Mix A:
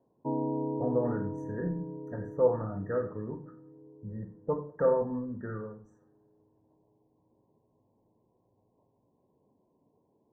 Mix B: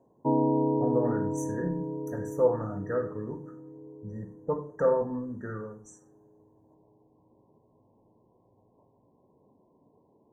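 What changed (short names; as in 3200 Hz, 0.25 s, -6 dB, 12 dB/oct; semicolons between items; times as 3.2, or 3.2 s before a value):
background +6.0 dB; master: remove air absorption 400 m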